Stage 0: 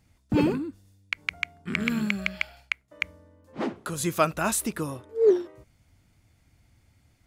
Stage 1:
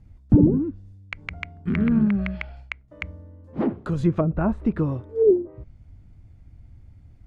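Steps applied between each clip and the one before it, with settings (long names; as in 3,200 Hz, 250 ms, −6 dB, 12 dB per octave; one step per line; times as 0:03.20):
treble cut that deepens with the level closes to 410 Hz, closed at −19 dBFS
spectral tilt −4 dB per octave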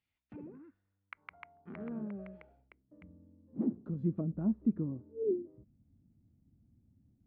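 band-pass filter sweep 3,100 Hz → 230 Hz, 0:00.03–0:03.09
level −6 dB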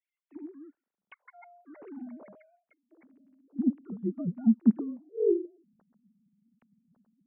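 three sine waves on the formant tracks
level +6 dB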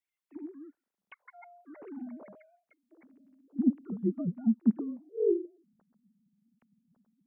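speech leveller within 4 dB 0.5 s
level −1 dB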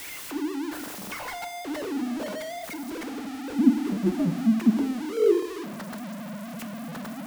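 converter with a step at zero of −35 dBFS
feedback delay network reverb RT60 0.93 s, low-frequency decay 1.2×, high-frequency decay 0.85×, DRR 9 dB
level +5 dB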